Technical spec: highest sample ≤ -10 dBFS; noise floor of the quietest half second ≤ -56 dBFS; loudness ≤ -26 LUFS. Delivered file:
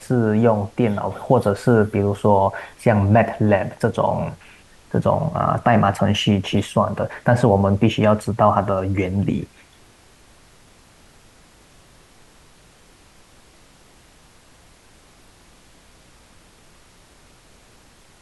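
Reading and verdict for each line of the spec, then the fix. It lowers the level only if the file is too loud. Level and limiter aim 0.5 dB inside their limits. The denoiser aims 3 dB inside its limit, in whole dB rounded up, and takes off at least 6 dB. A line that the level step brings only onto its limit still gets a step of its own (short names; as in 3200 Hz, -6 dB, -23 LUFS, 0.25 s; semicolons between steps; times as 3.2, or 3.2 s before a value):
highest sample -2.0 dBFS: fail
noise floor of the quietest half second -51 dBFS: fail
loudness -19.0 LUFS: fail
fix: gain -7.5 dB; limiter -10.5 dBFS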